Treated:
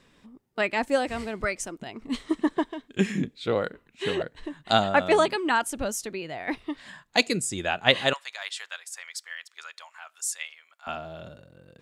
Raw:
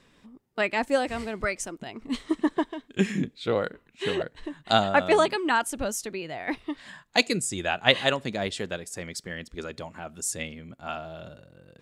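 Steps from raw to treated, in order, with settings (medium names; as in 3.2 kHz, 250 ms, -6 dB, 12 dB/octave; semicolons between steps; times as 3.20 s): 8.13–10.87 s: high-pass 1 kHz 24 dB/octave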